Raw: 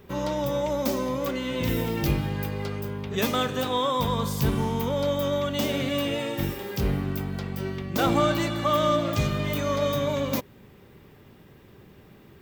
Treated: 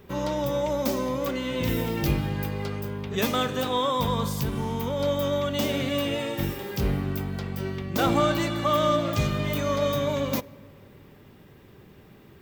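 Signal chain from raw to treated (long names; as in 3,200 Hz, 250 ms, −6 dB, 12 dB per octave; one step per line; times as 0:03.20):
0:04.26–0:05.00: downward compressor, threshold −24 dBFS, peak gain reduction 5.5 dB
on a send: convolution reverb RT60 2.4 s, pre-delay 6 ms, DRR 21.5 dB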